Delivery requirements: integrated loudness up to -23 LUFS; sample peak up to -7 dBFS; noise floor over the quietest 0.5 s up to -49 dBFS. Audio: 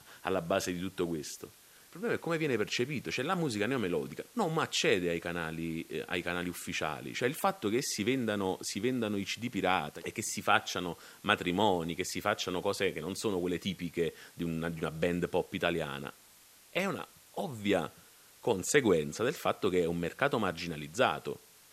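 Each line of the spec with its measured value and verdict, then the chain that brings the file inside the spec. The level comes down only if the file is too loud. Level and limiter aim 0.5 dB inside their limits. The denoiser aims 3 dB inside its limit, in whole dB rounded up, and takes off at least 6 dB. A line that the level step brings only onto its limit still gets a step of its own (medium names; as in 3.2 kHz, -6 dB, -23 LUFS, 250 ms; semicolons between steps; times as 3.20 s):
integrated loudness -33.0 LUFS: pass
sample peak -9.0 dBFS: pass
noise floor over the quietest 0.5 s -59 dBFS: pass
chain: none needed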